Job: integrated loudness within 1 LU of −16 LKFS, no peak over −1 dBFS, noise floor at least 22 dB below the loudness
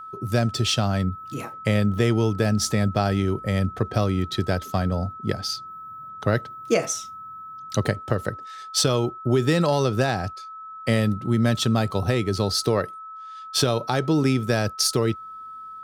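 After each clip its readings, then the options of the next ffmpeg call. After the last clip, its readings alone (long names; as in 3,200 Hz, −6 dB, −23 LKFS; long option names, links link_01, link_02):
interfering tone 1,300 Hz; level of the tone −36 dBFS; integrated loudness −23.5 LKFS; sample peak −8.0 dBFS; target loudness −16.0 LKFS
→ -af "bandreject=frequency=1300:width=30"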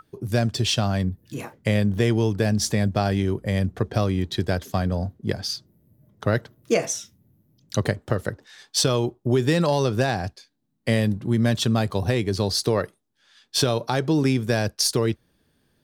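interfering tone none found; integrated loudness −24.0 LKFS; sample peak −8.0 dBFS; target loudness −16.0 LKFS
→ -af "volume=8dB,alimiter=limit=-1dB:level=0:latency=1"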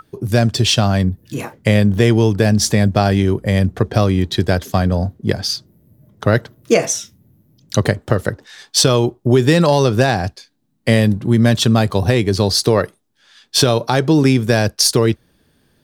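integrated loudness −16.0 LKFS; sample peak −1.0 dBFS; background noise floor −61 dBFS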